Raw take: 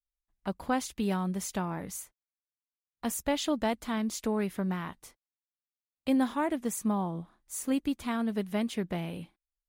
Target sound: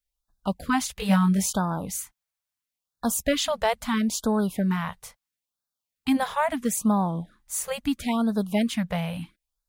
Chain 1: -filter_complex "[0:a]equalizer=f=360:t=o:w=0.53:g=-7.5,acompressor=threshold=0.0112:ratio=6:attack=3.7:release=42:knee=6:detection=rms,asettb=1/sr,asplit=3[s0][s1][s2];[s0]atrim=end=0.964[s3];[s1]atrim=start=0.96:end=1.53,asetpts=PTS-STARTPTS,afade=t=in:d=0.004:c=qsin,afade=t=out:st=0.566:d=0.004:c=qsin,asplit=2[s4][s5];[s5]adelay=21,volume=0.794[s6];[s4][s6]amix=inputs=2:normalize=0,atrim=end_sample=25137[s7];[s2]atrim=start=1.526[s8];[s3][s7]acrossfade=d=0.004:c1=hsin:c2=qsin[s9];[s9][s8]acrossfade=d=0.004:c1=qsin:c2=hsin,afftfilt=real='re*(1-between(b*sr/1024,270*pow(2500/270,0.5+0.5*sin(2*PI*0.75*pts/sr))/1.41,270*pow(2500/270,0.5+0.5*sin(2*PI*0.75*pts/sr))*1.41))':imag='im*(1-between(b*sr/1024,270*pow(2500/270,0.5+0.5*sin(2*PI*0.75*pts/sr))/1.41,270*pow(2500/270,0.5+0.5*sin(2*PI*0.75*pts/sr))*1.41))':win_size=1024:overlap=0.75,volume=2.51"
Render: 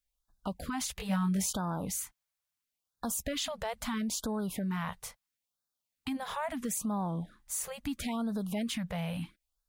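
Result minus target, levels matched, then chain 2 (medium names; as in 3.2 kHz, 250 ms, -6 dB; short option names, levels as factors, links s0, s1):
compression: peak gain reduction +14 dB
-filter_complex "[0:a]equalizer=f=360:t=o:w=0.53:g=-7.5,asettb=1/sr,asplit=3[s0][s1][s2];[s0]atrim=end=0.964[s3];[s1]atrim=start=0.96:end=1.53,asetpts=PTS-STARTPTS,afade=t=in:d=0.004:c=qsin,afade=t=out:st=0.566:d=0.004:c=qsin,asplit=2[s4][s5];[s5]adelay=21,volume=0.794[s6];[s4][s6]amix=inputs=2:normalize=0,atrim=end_sample=25137[s7];[s2]atrim=start=1.526[s8];[s3][s7]acrossfade=d=0.004:c1=hsin:c2=qsin[s9];[s9][s8]acrossfade=d=0.004:c1=qsin:c2=hsin,afftfilt=real='re*(1-between(b*sr/1024,270*pow(2500/270,0.5+0.5*sin(2*PI*0.75*pts/sr))/1.41,270*pow(2500/270,0.5+0.5*sin(2*PI*0.75*pts/sr))*1.41))':imag='im*(1-between(b*sr/1024,270*pow(2500/270,0.5+0.5*sin(2*PI*0.75*pts/sr))/1.41,270*pow(2500/270,0.5+0.5*sin(2*PI*0.75*pts/sr))*1.41))':win_size=1024:overlap=0.75,volume=2.51"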